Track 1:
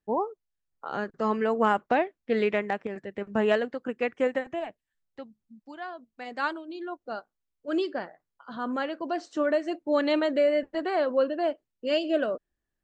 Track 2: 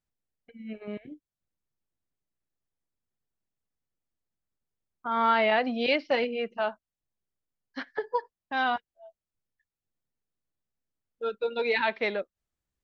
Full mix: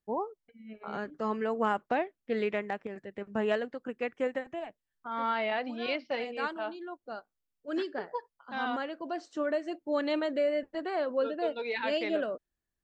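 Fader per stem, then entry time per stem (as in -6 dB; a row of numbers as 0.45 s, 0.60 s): -5.5 dB, -7.5 dB; 0.00 s, 0.00 s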